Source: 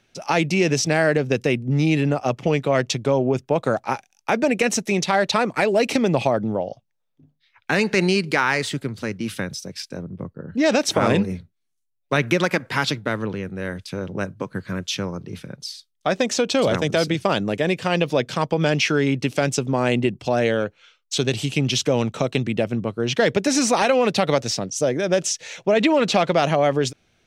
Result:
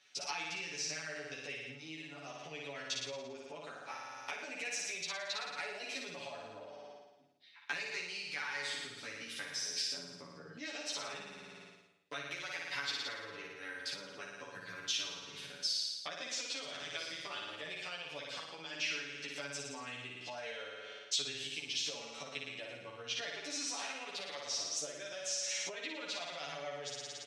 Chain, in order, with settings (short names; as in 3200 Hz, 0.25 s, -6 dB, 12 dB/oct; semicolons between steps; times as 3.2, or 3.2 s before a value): flutter echo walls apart 9.7 m, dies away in 1 s; compressor 10:1, threshold -31 dBFS, peak gain reduction 21 dB; LPF 4300 Hz 12 dB/oct; low shelf 220 Hz +3.5 dB; de-esser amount 65%; differentiator; comb 7 ms; endless flanger 11.8 ms -0.71 Hz; gain +10 dB